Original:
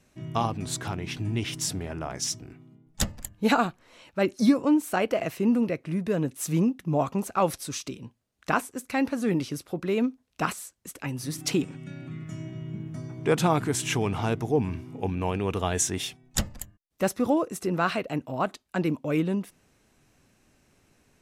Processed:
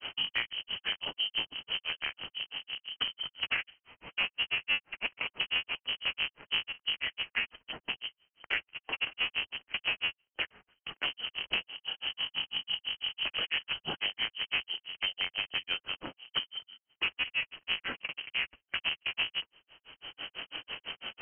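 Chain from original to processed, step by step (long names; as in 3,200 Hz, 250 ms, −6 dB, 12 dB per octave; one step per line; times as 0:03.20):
sub-harmonics by changed cycles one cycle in 3, inverted
harmonic and percussive parts rebalanced percussive −7 dB
voice inversion scrambler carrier 3,100 Hz
granular cloud 137 ms, grains 6 per second, spray 15 ms, pitch spread up and down by 0 semitones
multiband upward and downward compressor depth 100%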